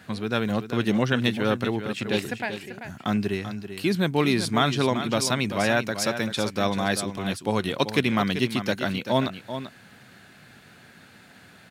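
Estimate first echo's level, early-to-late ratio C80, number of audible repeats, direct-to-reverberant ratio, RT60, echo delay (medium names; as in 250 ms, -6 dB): -10.0 dB, no reverb, 1, no reverb, no reverb, 388 ms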